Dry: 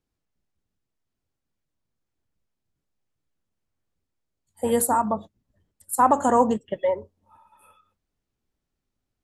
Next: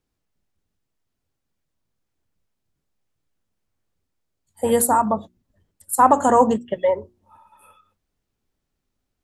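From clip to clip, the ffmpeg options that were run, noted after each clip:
ffmpeg -i in.wav -af "bandreject=frequency=60:width_type=h:width=6,bandreject=frequency=120:width_type=h:width=6,bandreject=frequency=180:width_type=h:width=6,bandreject=frequency=240:width_type=h:width=6,bandreject=frequency=300:width_type=h:width=6,bandreject=frequency=360:width_type=h:width=6,volume=4dB" out.wav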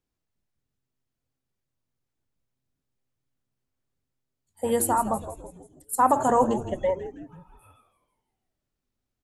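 ffmpeg -i in.wav -filter_complex "[0:a]asplit=6[link_01][link_02][link_03][link_04][link_05][link_06];[link_02]adelay=163,afreqshift=-130,volume=-12dB[link_07];[link_03]adelay=326,afreqshift=-260,volume=-17.8dB[link_08];[link_04]adelay=489,afreqshift=-390,volume=-23.7dB[link_09];[link_05]adelay=652,afreqshift=-520,volume=-29.5dB[link_10];[link_06]adelay=815,afreqshift=-650,volume=-35.4dB[link_11];[link_01][link_07][link_08][link_09][link_10][link_11]amix=inputs=6:normalize=0,volume=-6dB" out.wav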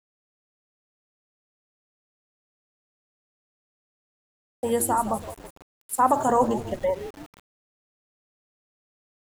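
ffmpeg -i in.wav -af "aeval=exprs='val(0)*gte(abs(val(0)),0.01)':channel_layout=same" out.wav

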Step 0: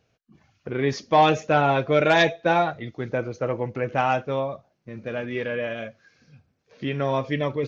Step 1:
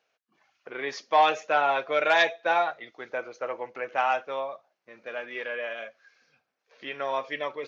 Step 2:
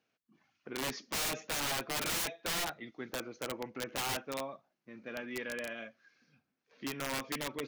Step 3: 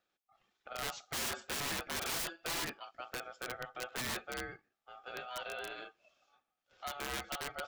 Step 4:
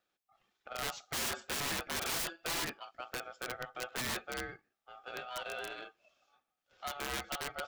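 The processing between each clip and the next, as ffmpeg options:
ffmpeg -i in.wav -af "highpass=720,highshelf=frequency=4700:gain=-7.5" out.wav
ffmpeg -i in.wav -af "lowshelf=frequency=370:width_type=q:width=1.5:gain=12,aeval=exprs='(mod(14.1*val(0)+1,2)-1)/14.1':channel_layout=same,volume=-6dB" out.wav
ffmpeg -i in.wav -af "aeval=exprs='val(0)*sin(2*PI*1000*n/s)':channel_layout=same" out.wav
ffmpeg -i in.wav -af "aeval=exprs='0.0376*(cos(1*acos(clip(val(0)/0.0376,-1,1)))-cos(1*PI/2))+0.000944*(cos(7*acos(clip(val(0)/0.0376,-1,1)))-cos(7*PI/2))':channel_layout=same,volume=1.5dB" out.wav

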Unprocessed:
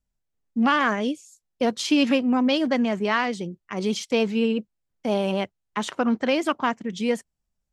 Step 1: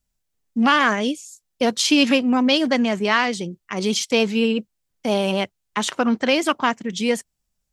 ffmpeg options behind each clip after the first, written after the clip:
ffmpeg -i in.wav -af "highshelf=frequency=2500:gain=8,volume=2.5dB" out.wav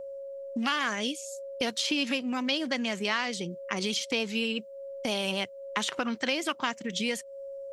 ffmpeg -i in.wav -filter_complex "[0:a]aeval=exprs='val(0)+0.0141*sin(2*PI*550*n/s)':channel_layout=same,acrossover=split=1700|4000[link_01][link_02][link_03];[link_01]acompressor=threshold=-32dB:ratio=4[link_04];[link_02]acompressor=threshold=-32dB:ratio=4[link_05];[link_03]acompressor=threshold=-39dB:ratio=4[link_06];[link_04][link_05][link_06]amix=inputs=3:normalize=0" out.wav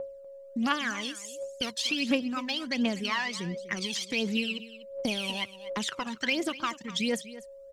ffmpeg -i in.wav -af "aphaser=in_gain=1:out_gain=1:delay=1.2:decay=0.71:speed=1.4:type=triangular,aecho=1:1:245:0.158,volume=-4dB" out.wav

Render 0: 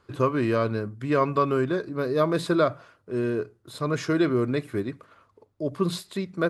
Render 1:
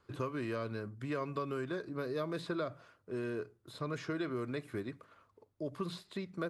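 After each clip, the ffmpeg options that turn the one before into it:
ffmpeg -i in.wav -filter_complex "[0:a]acrossover=split=630|1400|4900[link_01][link_02][link_03][link_04];[link_01]acompressor=threshold=-30dB:ratio=4[link_05];[link_02]acompressor=threshold=-39dB:ratio=4[link_06];[link_03]acompressor=threshold=-40dB:ratio=4[link_07];[link_04]acompressor=threshold=-56dB:ratio=4[link_08];[link_05][link_06][link_07][link_08]amix=inputs=4:normalize=0,volume=-7dB" out.wav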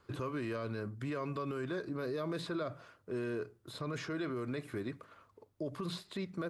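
ffmpeg -i in.wav -af "alimiter=level_in=9dB:limit=-24dB:level=0:latency=1:release=26,volume=-9dB,volume=3.5dB" out.wav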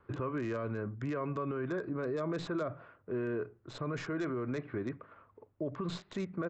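ffmpeg -i in.wav -filter_complex "[0:a]acrossover=split=660|2500[link_01][link_02][link_03];[link_03]acrusher=bits=5:dc=4:mix=0:aa=0.000001[link_04];[link_01][link_02][link_04]amix=inputs=3:normalize=0,aresample=16000,aresample=44100,volume=2.5dB" out.wav

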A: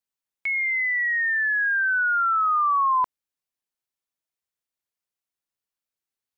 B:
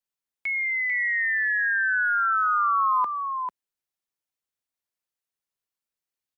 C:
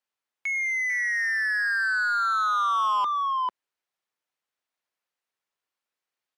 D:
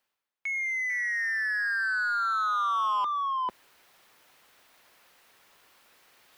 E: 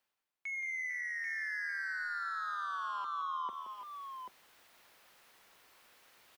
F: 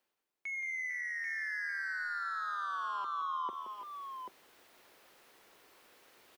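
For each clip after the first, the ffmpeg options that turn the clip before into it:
ffmpeg -i in.wav -filter_complex "[0:a]acrossover=split=100|420[link_01][link_02][link_03];[link_01]aeval=exprs='(mod(355*val(0)+1,2)-1)/355':channel_layout=same[link_04];[link_04][link_02][link_03]amix=inputs=3:normalize=0,aecho=1:1:445:0.473,volume=-2dB" out.wav
ffmpeg -i in.wav -filter_complex "[0:a]asplit=2[link_01][link_02];[link_02]highpass=frequency=720:poles=1,volume=18dB,asoftclip=type=tanh:threshold=-15.5dB[link_03];[link_01][link_03]amix=inputs=2:normalize=0,lowpass=frequency=1900:poles=1,volume=-6dB,volume=-3dB" out.wav
ffmpeg -i in.wav -af "areverse,acompressor=mode=upward:threshold=-32dB:ratio=2.5,areverse,equalizer=frequency=7300:width_type=o:width=1.2:gain=-4,volume=-3dB" out.wav
ffmpeg -i in.wav -af "alimiter=level_in=7.5dB:limit=-24dB:level=0:latency=1:release=360,volume=-7.5dB,aecho=1:1:41|174|325|788:0.126|0.335|0.168|0.447,volume=-4dB" out.wav
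ffmpeg -i in.wav -af "equalizer=frequency=370:width_type=o:width=1.4:gain=8.5" out.wav

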